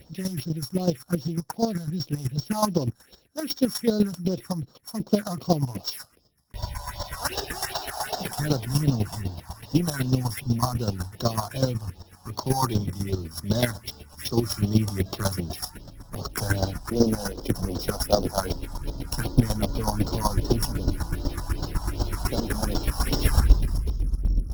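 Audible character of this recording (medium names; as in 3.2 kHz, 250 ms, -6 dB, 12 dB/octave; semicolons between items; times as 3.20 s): a buzz of ramps at a fixed pitch in blocks of 8 samples; phasing stages 4, 2.6 Hz, lowest notch 360–2300 Hz; chopped level 8 Hz, depth 65%, duty 20%; Opus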